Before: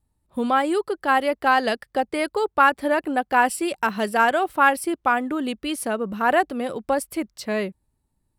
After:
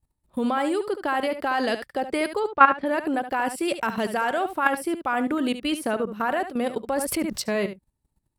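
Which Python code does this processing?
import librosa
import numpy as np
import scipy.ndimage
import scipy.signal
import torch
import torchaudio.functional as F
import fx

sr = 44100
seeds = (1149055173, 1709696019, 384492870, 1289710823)

y = fx.lowpass(x, sr, hz=3500.0, slope=12, at=(2.39, 2.85), fade=0.02)
y = fx.level_steps(y, sr, step_db=14)
y = y + 10.0 ** (-11.0 / 20.0) * np.pad(y, (int(72 * sr / 1000.0), 0))[:len(y)]
y = fx.env_flatten(y, sr, amount_pct=70, at=(6.96, 7.42))
y = y * librosa.db_to_amplitude(4.0)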